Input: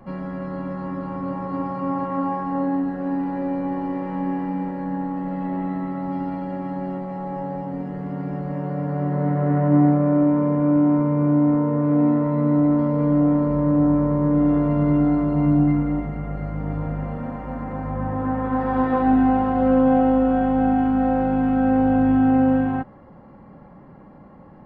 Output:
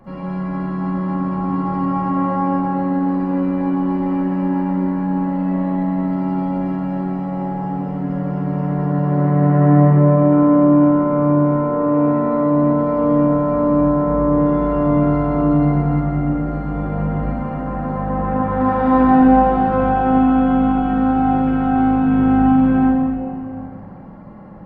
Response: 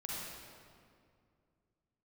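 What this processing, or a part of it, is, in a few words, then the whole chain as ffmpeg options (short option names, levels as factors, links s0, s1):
stairwell: -filter_complex "[1:a]atrim=start_sample=2205[s0];[0:a][s0]afir=irnorm=-1:irlink=0,asettb=1/sr,asplit=3[s1][s2][s3];[s1]atrim=end=9.794[s4];[s2]atrim=start=9.79:end=10.32,asetpts=PTS-STARTPTS,afade=t=in:d=0.004:c=qsin,afade=t=out:st=0.526:d=0.004:c=qsin,bandreject=f=1400:w=7.7[s5];[s3]atrim=start=10.316[s6];[s4][s5]acrossfade=d=0.004:c1=hsin:c2=qsin[s7];[s7][s6]acrossfade=d=0.004:c1=qsin:c2=hsin,volume=1.68"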